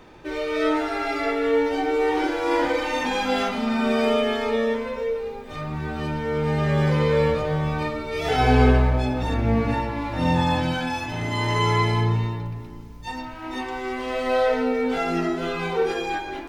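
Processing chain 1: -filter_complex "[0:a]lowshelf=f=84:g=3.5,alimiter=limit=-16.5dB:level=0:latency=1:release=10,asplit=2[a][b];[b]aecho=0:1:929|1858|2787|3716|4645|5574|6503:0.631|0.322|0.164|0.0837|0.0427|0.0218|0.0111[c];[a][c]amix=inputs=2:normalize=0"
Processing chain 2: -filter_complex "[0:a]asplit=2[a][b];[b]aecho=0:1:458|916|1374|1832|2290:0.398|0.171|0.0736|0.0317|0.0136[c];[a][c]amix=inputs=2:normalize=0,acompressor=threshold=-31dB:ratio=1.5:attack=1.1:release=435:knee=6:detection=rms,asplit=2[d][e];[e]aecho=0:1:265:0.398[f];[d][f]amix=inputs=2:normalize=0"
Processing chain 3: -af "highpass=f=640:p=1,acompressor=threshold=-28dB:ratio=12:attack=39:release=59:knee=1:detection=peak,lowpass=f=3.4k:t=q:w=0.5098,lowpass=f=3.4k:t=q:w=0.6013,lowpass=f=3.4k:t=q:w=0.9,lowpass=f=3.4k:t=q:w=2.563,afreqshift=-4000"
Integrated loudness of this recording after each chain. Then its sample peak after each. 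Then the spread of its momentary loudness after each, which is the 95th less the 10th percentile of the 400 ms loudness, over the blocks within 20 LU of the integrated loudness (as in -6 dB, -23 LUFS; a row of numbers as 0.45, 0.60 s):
-24.0, -27.5, -26.5 LUFS; -11.5, -13.0, -15.5 dBFS; 4, 6, 9 LU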